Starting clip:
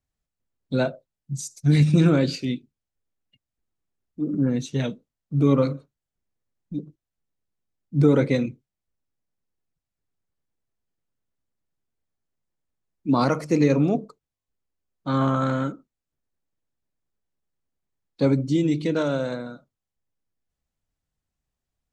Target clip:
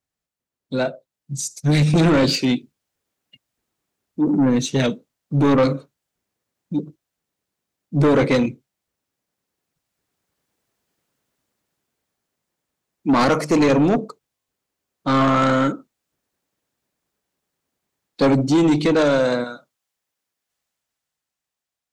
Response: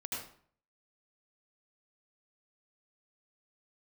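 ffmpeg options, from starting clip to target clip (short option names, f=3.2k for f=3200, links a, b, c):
-af "asetnsamples=n=441:p=0,asendcmd='19.44 highpass f 1000',highpass=f=250:p=1,dynaudnorm=f=380:g=9:m=15dB,asoftclip=type=tanh:threshold=-14.5dB,volume=3dB"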